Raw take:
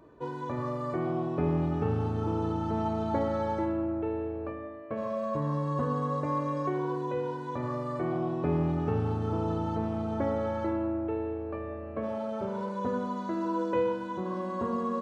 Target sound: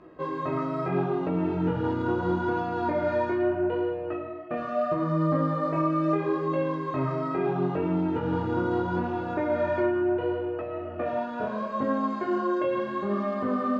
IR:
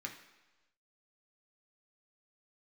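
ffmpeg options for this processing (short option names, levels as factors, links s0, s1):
-filter_complex "[0:a]lowpass=3500,asplit=2[s0][s1];[1:a]atrim=start_sample=2205[s2];[s1][s2]afir=irnorm=-1:irlink=0,volume=0.631[s3];[s0][s3]amix=inputs=2:normalize=0,alimiter=limit=0.0841:level=0:latency=1:release=177,flanger=delay=20:depth=8:speed=0.69,asetrate=48000,aresample=44100,volume=2.24"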